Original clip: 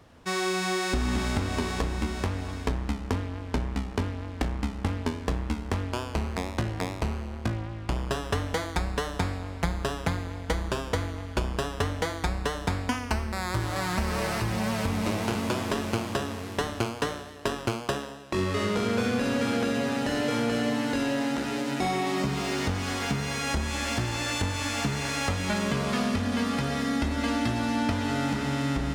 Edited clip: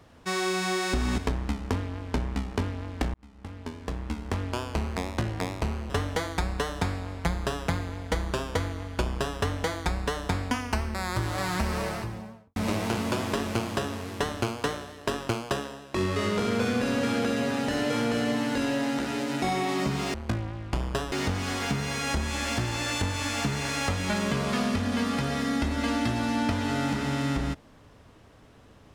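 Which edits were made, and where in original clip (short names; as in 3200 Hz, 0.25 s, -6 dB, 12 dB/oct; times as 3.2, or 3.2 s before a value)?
1.18–2.58 cut
4.54–5.9 fade in
7.3–8.28 move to 22.52
14–14.94 studio fade out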